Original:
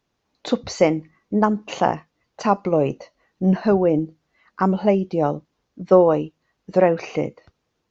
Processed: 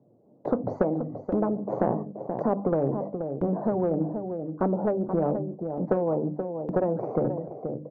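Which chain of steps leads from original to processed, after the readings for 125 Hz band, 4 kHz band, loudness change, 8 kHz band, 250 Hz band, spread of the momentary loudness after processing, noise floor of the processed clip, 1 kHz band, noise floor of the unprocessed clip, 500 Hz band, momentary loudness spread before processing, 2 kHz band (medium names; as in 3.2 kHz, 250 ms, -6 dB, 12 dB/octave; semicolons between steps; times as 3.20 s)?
-4.5 dB, under -30 dB, -7.5 dB, no reading, -5.5 dB, 7 LU, -59 dBFS, -9.0 dB, -75 dBFS, -6.5 dB, 14 LU, -14.5 dB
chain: companding laws mixed up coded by mu; elliptic band-pass 120–610 Hz, stop band 60 dB; hum notches 50/100/150/200/250/300 Hz; gate -44 dBFS, range -12 dB; compression, threshold -22 dBFS, peak gain reduction 13 dB; flange 0.9 Hz, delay 0.8 ms, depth 7.7 ms, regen -60%; delay 479 ms -14 dB; spectrum-flattening compressor 2:1; trim +7 dB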